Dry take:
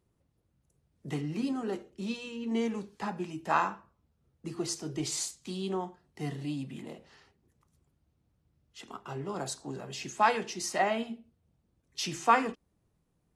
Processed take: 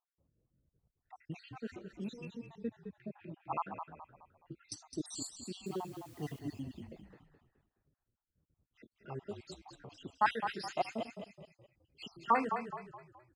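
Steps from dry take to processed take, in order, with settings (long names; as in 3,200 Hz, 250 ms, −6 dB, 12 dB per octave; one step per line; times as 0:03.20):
time-frequency cells dropped at random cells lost 67%
low-pass that shuts in the quiet parts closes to 1,200 Hz, open at −32.5 dBFS
0:02.25–0:04.72: high-frequency loss of the air 420 metres
0:05.66–0:06.39: bit-depth reduction 10 bits, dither triangular
echo with shifted repeats 211 ms, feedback 39%, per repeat −35 Hz, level −8 dB
level −3.5 dB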